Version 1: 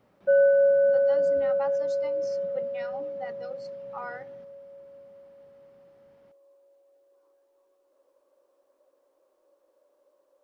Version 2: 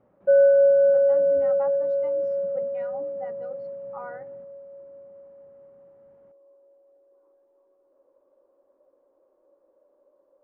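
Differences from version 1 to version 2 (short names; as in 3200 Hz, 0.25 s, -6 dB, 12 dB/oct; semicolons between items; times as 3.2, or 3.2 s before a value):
background: add low shelf 480 Hz +8 dB; master: add LPF 1300 Hz 12 dB/oct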